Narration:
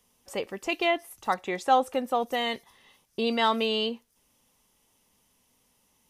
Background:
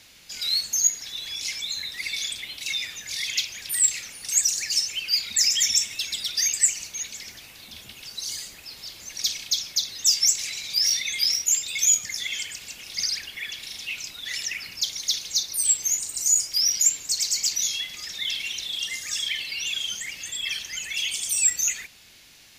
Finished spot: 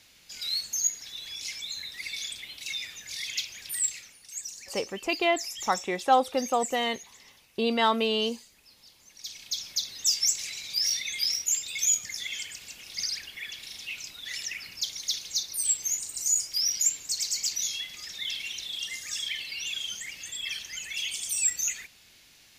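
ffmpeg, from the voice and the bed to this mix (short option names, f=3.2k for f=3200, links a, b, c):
-filter_complex "[0:a]adelay=4400,volume=0.5dB[a];[1:a]volume=5.5dB,afade=t=out:st=3.7:d=0.57:silence=0.298538,afade=t=in:st=9.21:d=0.51:silence=0.266073[b];[a][b]amix=inputs=2:normalize=0"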